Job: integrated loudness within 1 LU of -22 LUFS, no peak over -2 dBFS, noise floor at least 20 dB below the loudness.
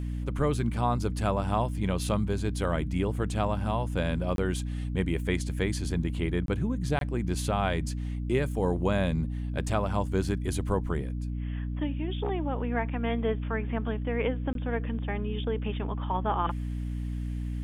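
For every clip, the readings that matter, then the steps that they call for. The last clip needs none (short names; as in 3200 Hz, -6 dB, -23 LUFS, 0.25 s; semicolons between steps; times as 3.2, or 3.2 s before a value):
dropouts 4; longest dropout 22 ms; hum 60 Hz; harmonics up to 300 Hz; hum level -30 dBFS; loudness -30.0 LUFS; peak -13.0 dBFS; loudness target -22.0 LUFS
-> interpolate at 4.36/6.46/6.99/14.53, 22 ms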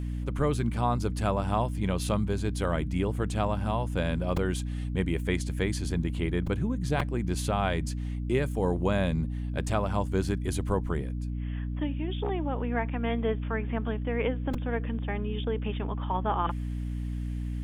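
dropouts 0; hum 60 Hz; harmonics up to 300 Hz; hum level -30 dBFS
-> notches 60/120/180/240/300 Hz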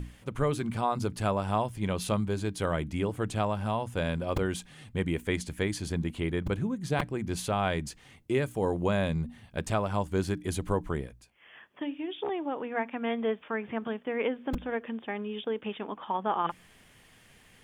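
hum none; loudness -31.5 LUFS; peak -14.0 dBFS; loudness target -22.0 LUFS
-> gain +9.5 dB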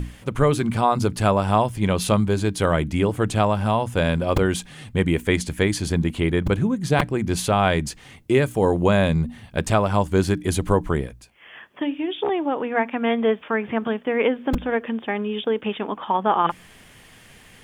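loudness -22.0 LUFS; peak -4.5 dBFS; noise floor -49 dBFS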